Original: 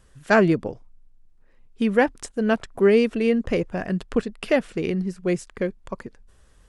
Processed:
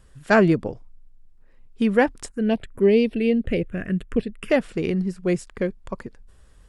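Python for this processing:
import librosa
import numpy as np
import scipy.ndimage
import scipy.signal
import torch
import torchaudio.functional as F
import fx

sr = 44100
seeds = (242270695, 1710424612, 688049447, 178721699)

y = fx.env_phaser(x, sr, low_hz=580.0, high_hz=1400.0, full_db=-16.0, at=(2.3, 4.5))
y = fx.low_shelf(y, sr, hz=170.0, db=4.0)
y = fx.notch(y, sr, hz=6100.0, q=17.0)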